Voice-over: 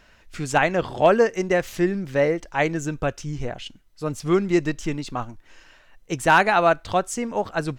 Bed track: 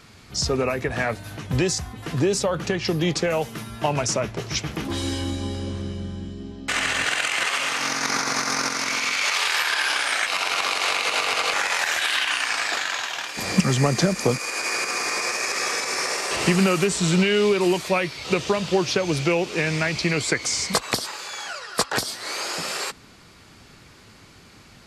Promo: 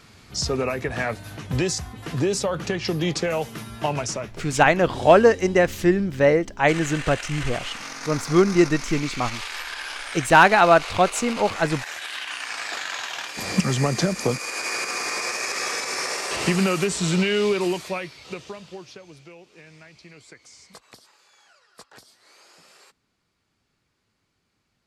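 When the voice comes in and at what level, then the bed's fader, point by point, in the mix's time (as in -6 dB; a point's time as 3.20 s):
4.05 s, +3.0 dB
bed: 3.90 s -1.5 dB
4.47 s -10.5 dB
12.08 s -10.5 dB
13.16 s -2 dB
17.56 s -2 dB
19.24 s -24.5 dB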